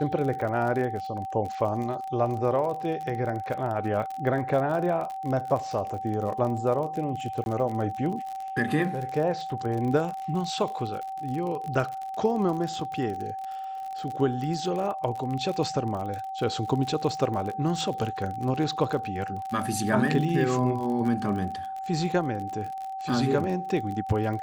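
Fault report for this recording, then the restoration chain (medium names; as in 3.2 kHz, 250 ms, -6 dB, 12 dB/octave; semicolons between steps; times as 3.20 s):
crackle 44 per s -32 dBFS
whine 770 Hz -32 dBFS
7.44–7.46 s: dropout 21 ms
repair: de-click; band-stop 770 Hz, Q 30; interpolate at 7.44 s, 21 ms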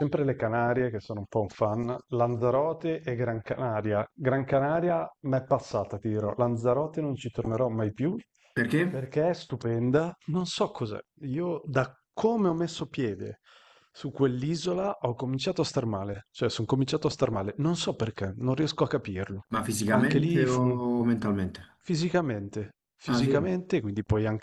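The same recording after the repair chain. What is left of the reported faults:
nothing left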